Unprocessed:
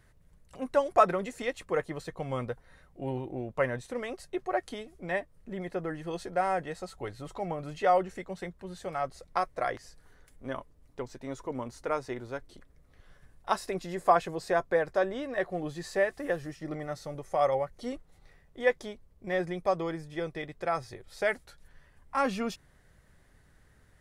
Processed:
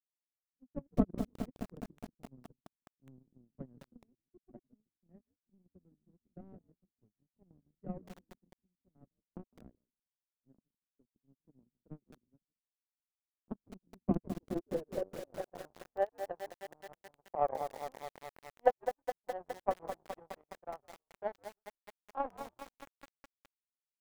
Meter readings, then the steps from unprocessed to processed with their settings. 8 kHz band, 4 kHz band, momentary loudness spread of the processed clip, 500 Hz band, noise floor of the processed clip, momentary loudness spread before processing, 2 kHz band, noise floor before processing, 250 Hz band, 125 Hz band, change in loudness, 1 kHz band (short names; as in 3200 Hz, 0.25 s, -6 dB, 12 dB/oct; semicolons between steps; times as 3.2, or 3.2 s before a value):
-12.5 dB, -15.0 dB, 21 LU, -10.5 dB, under -85 dBFS, 14 LU, -18.5 dB, -62 dBFS, -5.0 dB, -7.5 dB, -7.5 dB, -10.5 dB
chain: on a send: frequency-shifting echo 0.158 s, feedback 38%, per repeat -110 Hz, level -10 dB; on the sum: power-law curve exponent 3; low-pass sweep 230 Hz -> 790 Hz, 14.12–15.57; lo-fi delay 0.208 s, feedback 80%, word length 9-bit, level -8 dB; gain +9.5 dB